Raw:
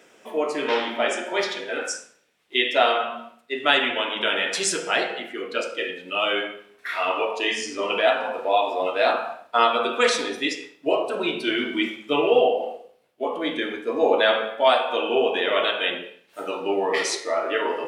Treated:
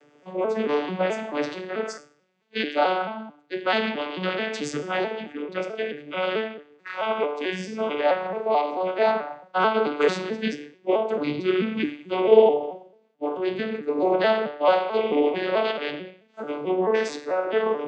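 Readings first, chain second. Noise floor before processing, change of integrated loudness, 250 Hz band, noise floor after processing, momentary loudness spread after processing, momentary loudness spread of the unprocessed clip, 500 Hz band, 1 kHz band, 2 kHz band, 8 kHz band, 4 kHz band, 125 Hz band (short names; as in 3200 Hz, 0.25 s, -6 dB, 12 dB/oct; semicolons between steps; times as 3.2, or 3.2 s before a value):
-58 dBFS, -1.5 dB, +2.0 dB, -60 dBFS, 11 LU, 11 LU, +0.5 dB, -2.0 dB, -5.5 dB, under -10 dB, -9.0 dB, n/a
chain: arpeggiated vocoder major triad, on D3, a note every 0.219 s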